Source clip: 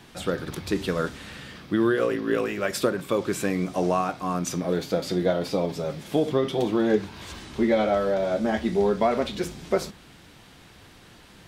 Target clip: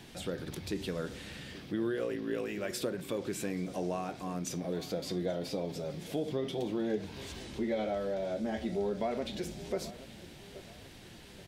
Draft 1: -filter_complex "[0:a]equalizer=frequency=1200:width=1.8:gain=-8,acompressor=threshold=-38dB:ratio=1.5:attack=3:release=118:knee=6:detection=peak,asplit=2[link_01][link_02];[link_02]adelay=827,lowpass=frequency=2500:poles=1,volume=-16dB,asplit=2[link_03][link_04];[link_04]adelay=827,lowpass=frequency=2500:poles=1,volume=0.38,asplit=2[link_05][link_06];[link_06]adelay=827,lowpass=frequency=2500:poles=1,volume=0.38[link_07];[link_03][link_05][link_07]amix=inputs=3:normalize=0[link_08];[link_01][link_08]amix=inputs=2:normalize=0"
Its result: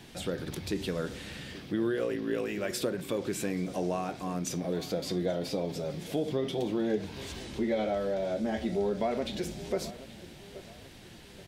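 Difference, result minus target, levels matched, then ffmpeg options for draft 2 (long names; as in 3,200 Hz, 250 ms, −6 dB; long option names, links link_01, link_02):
downward compressor: peak gain reduction −3.5 dB
-filter_complex "[0:a]equalizer=frequency=1200:width=1.8:gain=-8,acompressor=threshold=-48dB:ratio=1.5:attack=3:release=118:knee=6:detection=peak,asplit=2[link_01][link_02];[link_02]adelay=827,lowpass=frequency=2500:poles=1,volume=-16dB,asplit=2[link_03][link_04];[link_04]adelay=827,lowpass=frequency=2500:poles=1,volume=0.38,asplit=2[link_05][link_06];[link_06]adelay=827,lowpass=frequency=2500:poles=1,volume=0.38[link_07];[link_03][link_05][link_07]amix=inputs=3:normalize=0[link_08];[link_01][link_08]amix=inputs=2:normalize=0"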